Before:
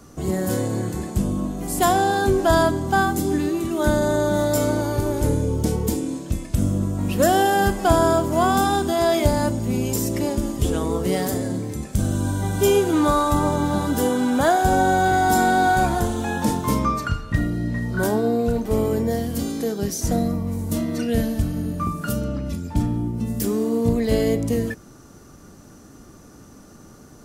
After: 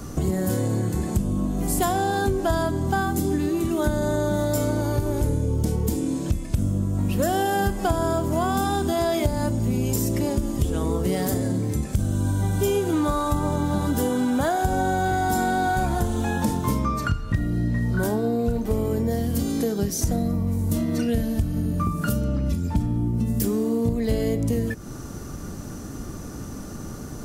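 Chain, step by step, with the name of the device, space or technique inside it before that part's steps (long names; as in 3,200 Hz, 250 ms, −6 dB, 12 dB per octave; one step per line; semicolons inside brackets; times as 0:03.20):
ASMR close-microphone chain (low-shelf EQ 180 Hz +7.5 dB; downward compressor 4 to 1, threshold −30 dBFS, peak gain reduction 18.5 dB; high-shelf EQ 11,000 Hz +4 dB)
level +7.5 dB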